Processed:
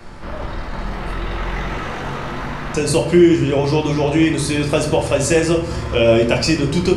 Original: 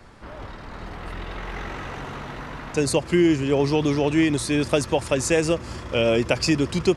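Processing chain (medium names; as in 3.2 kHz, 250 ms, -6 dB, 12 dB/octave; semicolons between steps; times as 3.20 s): in parallel at +1.5 dB: compression, threshold -33 dBFS, peak gain reduction 18 dB; on the sum: simulated room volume 90 m³, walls mixed, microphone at 0.77 m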